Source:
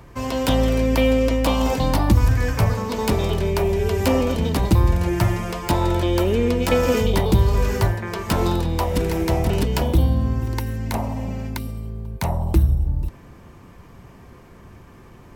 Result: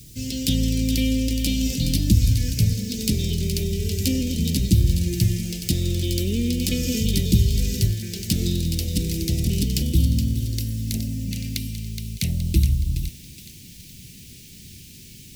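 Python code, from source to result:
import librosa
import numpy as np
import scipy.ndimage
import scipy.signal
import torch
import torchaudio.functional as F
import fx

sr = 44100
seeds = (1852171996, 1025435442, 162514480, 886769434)

y = fx.low_shelf(x, sr, hz=130.0, db=-7.5)
y = fx.echo_thinned(y, sr, ms=420, feedback_pct=50, hz=1100.0, wet_db=-7.5)
y = fx.dmg_noise_colour(y, sr, seeds[0], colour='white', level_db=-52.0)
y = fx.peak_eq(y, sr, hz=2500.0, db=fx.steps((0.0, 5.0), (11.31, 14.0)), octaves=1.5)
y = scipy.signal.sosfilt(scipy.signal.cheby1(2, 1.0, [190.0, 5100.0], 'bandstop', fs=sr, output='sos'), y)
y = F.gain(torch.from_numpy(y), 4.5).numpy()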